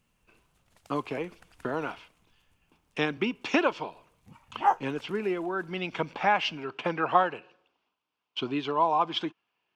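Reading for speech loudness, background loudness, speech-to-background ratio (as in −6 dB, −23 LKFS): −30.0 LKFS, −28.0 LKFS, −2.0 dB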